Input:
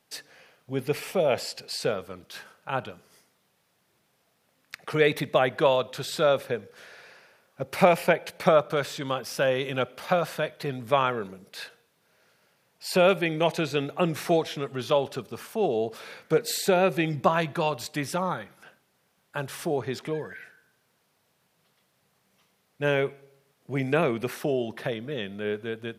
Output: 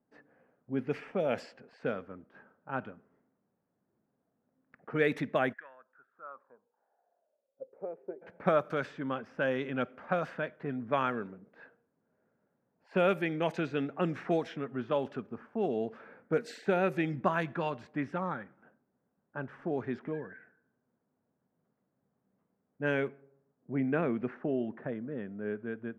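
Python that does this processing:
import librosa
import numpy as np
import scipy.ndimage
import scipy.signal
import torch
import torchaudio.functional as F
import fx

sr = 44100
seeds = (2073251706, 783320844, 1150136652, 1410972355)

y = fx.bandpass_q(x, sr, hz=fx.line((5.52, 1900.0), (8.21, 360.0)), q=9.3, at=(5.52, 8.21), fade=0.02)
y = fx.lowpass(y, sr, hz=1600.0, slope=6, at=(23.08, 25.67))
y = fx.env_lowpass(y, sr, base_hz=710.0, full_db=-18.0)
y = fx.graphic_eq_15(y, sr, hz=(250, 1600, 4000, 10000), db=(10, 6, -7, -4))
y = y * 10.0 ** (-8.5 / 20.0)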